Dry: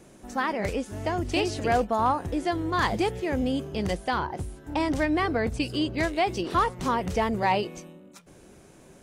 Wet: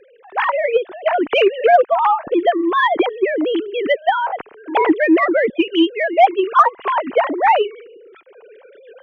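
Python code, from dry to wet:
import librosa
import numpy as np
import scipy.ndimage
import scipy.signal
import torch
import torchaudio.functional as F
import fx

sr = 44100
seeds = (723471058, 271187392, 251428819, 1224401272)

y = fx.sine_speech(x, sr)
y = fx.recorder_agc(y, sr, target_db=-14.5, rise_db_per_s=5.3, max_gain_db=30)
y = fx.cheby_harmonics(y, sr, harmonics=(7,), levels_db=(-40,), full_scale_db=-10.0)
y = F.gain(torch.from_numpy(y), 9.0).numpy()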